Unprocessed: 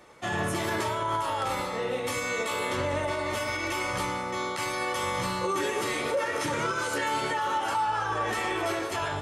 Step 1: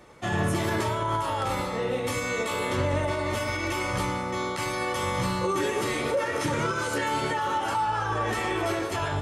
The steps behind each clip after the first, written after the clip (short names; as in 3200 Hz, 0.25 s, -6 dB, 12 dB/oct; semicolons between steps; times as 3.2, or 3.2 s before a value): low shelf 270 Hz +8.5 dB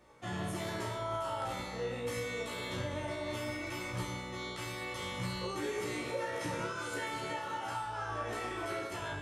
resonator 60 Hz, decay 0.63 s, harmonics all, mix 90%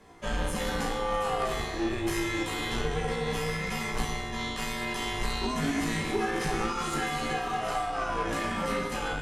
added harmonics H 2 -13 dB, 6 -28 dB, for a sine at -25 dBFS; frequency shift -140 Hz; gain +7.5 dB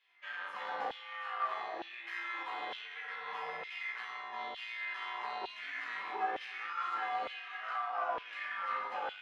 LFO high-pass saw down 1.1 Hz 610–3100 Hz; air absorption 340 m; gain -6 dB